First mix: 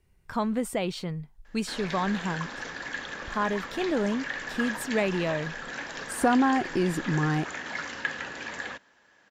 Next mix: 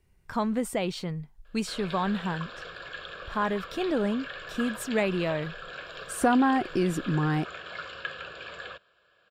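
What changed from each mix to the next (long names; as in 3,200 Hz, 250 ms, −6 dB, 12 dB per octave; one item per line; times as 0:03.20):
background: add phaser with its sweep stopped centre 1,300 Hz, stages 8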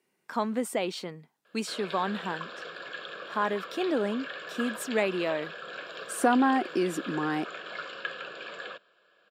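background: remove high-pass filter 370 Hz 6 dB per octave
master: add high-pass filter 230 Hz 24 dB per octave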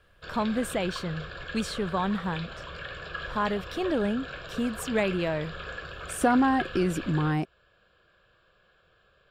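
background: entry −1.45 s
master: remove high-pass filter 230 Hz 24 dB per octave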